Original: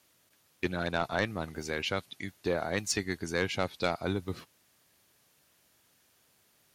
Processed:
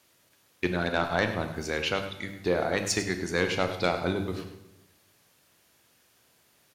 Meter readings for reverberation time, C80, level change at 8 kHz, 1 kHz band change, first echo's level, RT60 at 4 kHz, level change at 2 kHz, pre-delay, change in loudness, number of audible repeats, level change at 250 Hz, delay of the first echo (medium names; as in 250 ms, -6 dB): 1.0 s, 9.5 dB, +3.0 dB, +4.0 dB, -12.5 dB, 0.80 s, +4.5 dB, 20 ms, +4.0 dB, 1, +4.0 dB, 102 ms